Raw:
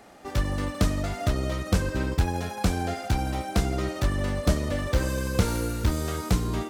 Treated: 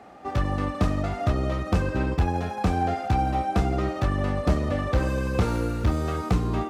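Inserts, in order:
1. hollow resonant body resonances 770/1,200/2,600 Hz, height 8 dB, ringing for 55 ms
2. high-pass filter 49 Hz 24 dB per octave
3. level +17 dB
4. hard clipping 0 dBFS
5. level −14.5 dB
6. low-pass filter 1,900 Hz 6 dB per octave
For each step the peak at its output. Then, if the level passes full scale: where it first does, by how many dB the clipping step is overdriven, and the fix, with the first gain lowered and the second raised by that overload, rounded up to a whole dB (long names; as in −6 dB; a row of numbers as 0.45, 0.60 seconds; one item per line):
−8.0, −8.0, +9.0, 0.0, −14.5, −14.5 dBFS
step 3, 9.0 dB
step 3 +8 dB, step 5 −5.5 dB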